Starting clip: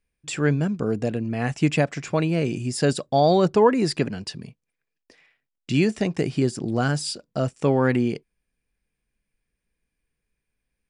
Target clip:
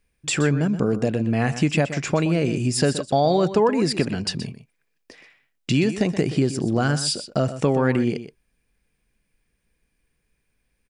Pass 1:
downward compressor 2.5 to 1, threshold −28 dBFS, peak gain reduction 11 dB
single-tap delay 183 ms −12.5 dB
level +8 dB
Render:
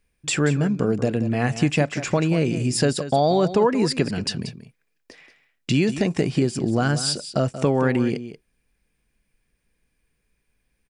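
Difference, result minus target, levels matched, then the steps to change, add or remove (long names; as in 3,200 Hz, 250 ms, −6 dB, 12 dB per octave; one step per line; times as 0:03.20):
echo 59 ms late
change: single-tap delay 124 ms −12.5 dB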